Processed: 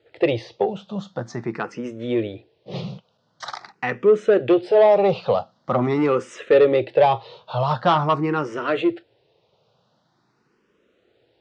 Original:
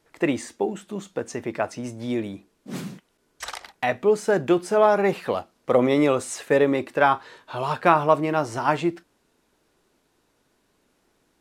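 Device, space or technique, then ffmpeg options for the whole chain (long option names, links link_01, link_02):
barber-pole phaser into a guitar amplifier: -filter_complex "[0:a]asplit=2[link_01][link_02];[link_02]afreqshift=0.45[link_03];[link_01][link_03]amix=inputs=2:normalize=1,asoftclip=type=tanh:threshold=-16dB,highpass=110,equalizer=frequency=120:width_type=q:width=4:gain=9,equalizer=frequency=270:width_type=q:width=4:gain=-9,equalizer=frequency=510:width_type=q:width=4:gain=5,equalizer=frequency=1000:width_type=q:width=4:gain=-4,equalizer=frequency=1600:width_type=q:width=4:gain=-5,equalizer=frequency=2200:width_type=q:width=4:gain=-5,lowpass=frequency=4500:width=0.5412,lowpass=frequency=4500:width=1.3066,volume=7.5dB"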